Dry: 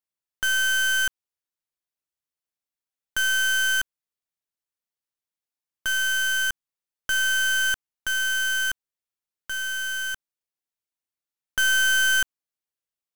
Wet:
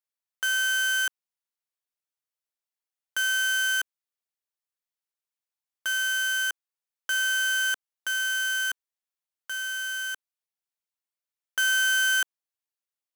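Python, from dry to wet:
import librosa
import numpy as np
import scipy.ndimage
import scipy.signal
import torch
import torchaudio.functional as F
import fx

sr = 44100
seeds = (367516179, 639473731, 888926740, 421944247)

y = scipy.signal.sosfilt(scipy.signal.butter(2, 470.0, 'highpass', fs=sr, output='sos'), x)
y = F.gain(torch.from_numpy(y), -2.5).numpy()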